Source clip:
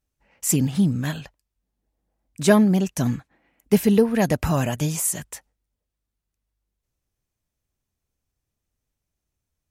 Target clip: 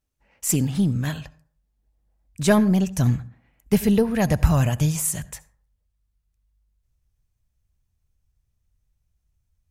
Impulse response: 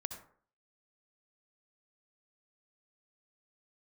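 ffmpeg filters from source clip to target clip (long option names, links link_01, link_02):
-filter_complex "[0:a]asplit=2[link_01][link_02];[1:a]atrim=start_sample=2205[link_03];[link_02][link_03]afir=irnorm=-1:irlink=0,volume=-9.5dB[link_04];[link_01][link_04]amix=inputs=2:normalize=0,asubboost=boost=6:cutoff=120,aeval=exprs='0.891*(cos(1*acos(clip(val(0)/0.891,-1,1)))-cos(1*PI/2))+0.0316*(cos(4*acos(clip(val(0)/0.891,-1,1)))-cos(4*PI/2))':channel_layout=same,volume=-3dB"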